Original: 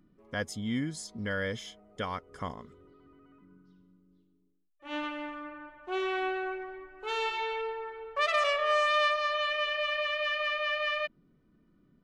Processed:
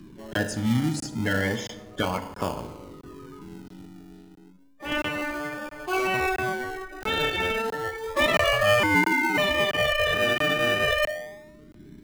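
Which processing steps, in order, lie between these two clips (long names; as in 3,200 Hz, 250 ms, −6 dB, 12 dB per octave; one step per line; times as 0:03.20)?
spectral magnitudes quantised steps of 30 dB
on a send at −7 dB: convolution reverb RT60 0.85 s, pre-delay 3 ms
0:08.83–0:09.38: on the sum: voice inversion scrambler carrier 2,700 Hz
in parallel at −6 dB: sample-and-hold swept by an LFO 32×, swing 60% 0.31 Hz
on the sum: regular buffer underruns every 0.67 s, samples 1,024, zero, from 0:00.33
multiband upward and downward compressor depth 40%
level +5 dB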